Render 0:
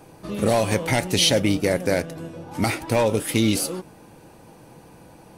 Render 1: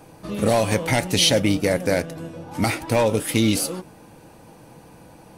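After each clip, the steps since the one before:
notch filter 380 Hz, Q 12
level +1 dB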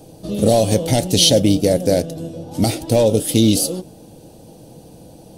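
flat-topped bell 1,500 Hz −15 dB
level +5.5 dB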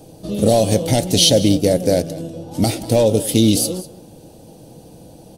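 single-tap delay 193 ms −17.5 dB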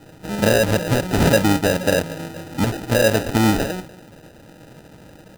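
decimation without filtering 40×
level −2.5 dB

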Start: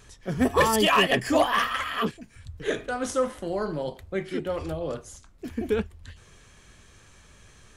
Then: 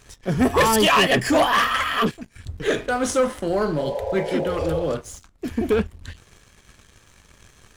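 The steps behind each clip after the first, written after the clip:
healed spectral selection 0:03.82–0:04.80, 410–1,000 Hz both
leveller curve on the samples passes 2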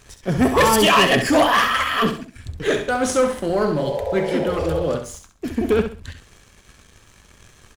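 repeating echo 66 ms, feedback 28%, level −8.5 dB
level +1.5 dB

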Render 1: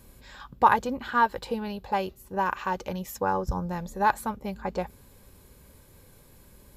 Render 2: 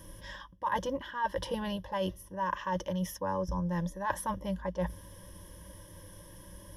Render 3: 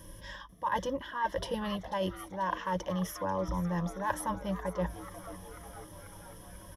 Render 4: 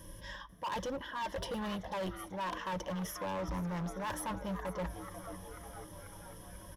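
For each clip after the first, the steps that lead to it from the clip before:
EQ curve with evenly spaced ripples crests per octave 1.2, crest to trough 16 dB; reversed playback; downward compressor 12 to 1, threshold −30 dBFS, peak gain reduction 21 dB; reversed playback; level +1 dB
echo with shifted repeats 490 ms, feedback 61%, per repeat +130 Hz, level −14.5 dB
gain into a clipping stage and back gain 33 dB; on a send at −22.5 dB: convolution reverb RT60 3.0 s, pre-delay 5 ms; on the sum: level −1 dB

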